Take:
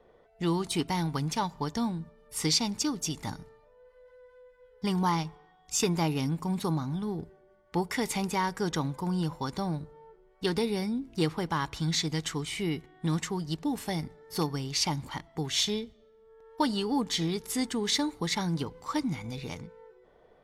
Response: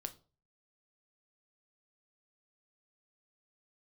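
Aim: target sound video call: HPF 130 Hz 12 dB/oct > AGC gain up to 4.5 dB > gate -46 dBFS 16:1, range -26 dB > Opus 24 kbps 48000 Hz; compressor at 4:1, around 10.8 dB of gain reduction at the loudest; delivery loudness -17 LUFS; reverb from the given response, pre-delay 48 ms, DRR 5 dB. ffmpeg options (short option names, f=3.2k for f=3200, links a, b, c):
-filter_complex "[0:a]acompressor=threshold=-35dB:ratio=4,asplit=2[a][b];[1:a]atrim=start_sample=2205,adelay=48[c];[b][c]afir=irnorm=-1:irlink=0,volume=-2.5dB[d];[a][d]amix=inputs=2:normalize=0,highpass=130,dynaudnorm=m=4.5dB,agate=range=-26dB:threshold=-46dB:ratio=16,volume=19dB" -ar 48000 -c:a libopus -b:a 24k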